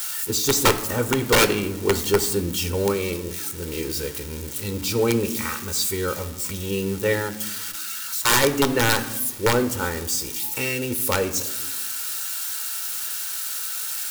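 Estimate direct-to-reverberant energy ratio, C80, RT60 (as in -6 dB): 9.5 dB, 15.0 dB, 1.1 s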